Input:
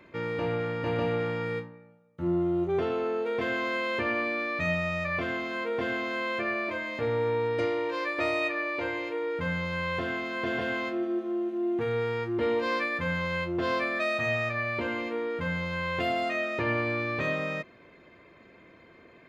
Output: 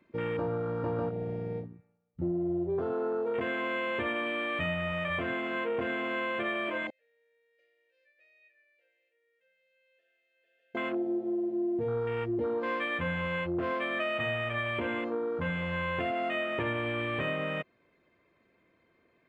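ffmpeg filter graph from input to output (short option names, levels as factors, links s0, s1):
-filter_complex "[0:a]asettb=1/sr,asplit=3[s0][s1][s2];[s0]atrim=end=1.094[s3];[s1]atrim=start=1.09:end=2.22,asetpts=PTS-STARTPTS,afade=t=in:d=0.004:c=qsin,afade=t=out:st=1.126:d=0.004:c=qsin,equalizer=f=140:w=1.2:g=4,acompressor=threshold=0.0224:ratio=1.5:attack=3.2:release=140:knee=1:detection=peak,tremolo=f=270:d=0.571[s4];[s2]atrim=start=2.216[s5];[s3][s4]acrossfade=d=0.004:c1=hsin:c2=qsin[s6];[s6][s5]acrossfade=d=0.004:c1=qsin:c2=hsin,asettb=1/sr,asplit=3[s7][s8][s9];[s7]atrim=end=6.904[s10];[s8]atrim=start=6.9:end=10.75,asetpts=PTS-STARTPTS,afade=t=in:d=0.004:c=qsin,afade=t=out:st=3.846:d=0.004:c=qsin,asplit=3[s11][s12][s13];[s11]bandpass=f=530:t=q:w=8,volume=1[s14];[s12]bandpass=f=1840:t=q:w=8,volume=0.501[s15];[s13]bandpass=f=2480:t=q:w=8,volume=0.355[s16];[s14][s15][s16]amix=inputs=3:normalize=0,aderivative[s17];[s9]atrim=start=10.746[s18];[s10][s17]acrossfade=d=0.004:c1=hsin:c2=qsin[s19];[s19][s18]acrossfade=d=0.004:c1=qsin:c2=hsin,acompressor=threshold=0.0316:ratio=6,afwtdn=0.0141,volume=1.26"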